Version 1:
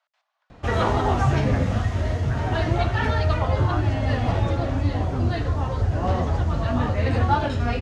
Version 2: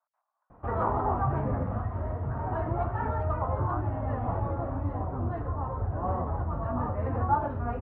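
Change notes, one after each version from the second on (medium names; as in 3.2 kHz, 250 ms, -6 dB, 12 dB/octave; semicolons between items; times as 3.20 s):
background: remove distance through air 73 m; master: add four-pole ladder low-pass 1.3 kHz, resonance 45%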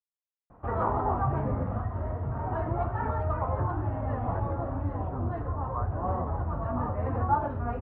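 speech: entry +2.05 s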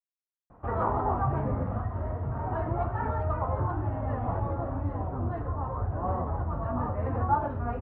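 speech -7.0 dB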